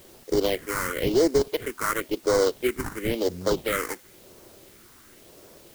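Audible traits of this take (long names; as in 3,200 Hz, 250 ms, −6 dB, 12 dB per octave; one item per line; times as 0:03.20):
aliases and images of a low sample rate 2,600 Hz, jitter 20%
phaser sweep stages 4, 0.96 Hz, lowest notch 550–2,800 Hz
a quantiser's noise floor 10 bits, dither triangular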